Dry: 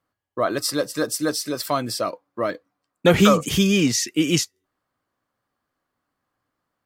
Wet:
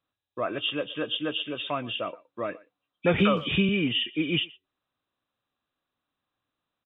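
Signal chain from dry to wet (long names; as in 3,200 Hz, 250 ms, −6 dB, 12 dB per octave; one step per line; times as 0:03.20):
hearing-aid frequency compression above 2,300 Hz 4 to 1
far-end echo of a speakerphone 120 ms, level −21 dB
0:03.18–0:03.69: multiband upward and downward compressor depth 70%
level −7.5 dB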